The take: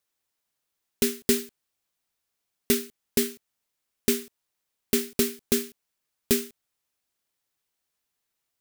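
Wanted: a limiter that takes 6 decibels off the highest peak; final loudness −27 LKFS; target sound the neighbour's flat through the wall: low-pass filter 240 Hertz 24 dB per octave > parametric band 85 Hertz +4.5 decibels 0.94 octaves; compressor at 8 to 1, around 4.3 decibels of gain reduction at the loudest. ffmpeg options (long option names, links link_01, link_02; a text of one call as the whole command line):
ffmpeg -i in.wav -af "acompressor=threshold=-22dB:ratio=8,alimiter=limit=-14dB:level=0:latency=1,lowpass=frequency=240:width=0.5412,lowpass=frequency=240:width=1.3066,equalizer=frequency=85:width_type=o:width=0.94:gain=4.5,volume=15.5dB" out.wav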